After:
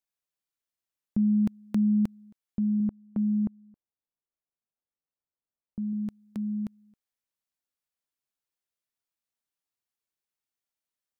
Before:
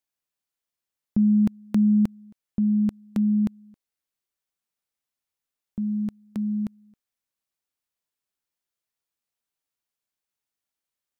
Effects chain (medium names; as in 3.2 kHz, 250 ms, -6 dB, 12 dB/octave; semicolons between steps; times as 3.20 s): 2.80–5.93 s: low-pass 1 kHz 12 dB/octave; trim -4.5 dB